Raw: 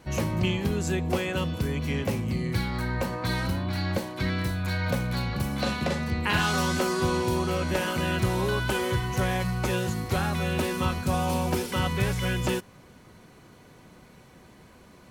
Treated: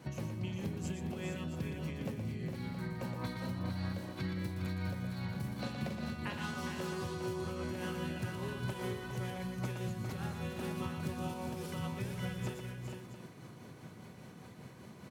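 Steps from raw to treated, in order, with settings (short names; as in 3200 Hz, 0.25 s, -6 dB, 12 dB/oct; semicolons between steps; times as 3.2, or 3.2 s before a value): HPF 100 Hz 24 dB/oct; low shelf 200 Hz +9.5 dB; compressor, threshold -34 dBFS, peak gain reduction 17.5 dB; tremolo triangle 5 Hz, depth 60%; tapped delay 0.119/0.408/0.456/0.67 s -7/-7.5/-8/-12 dB; gain -2 dB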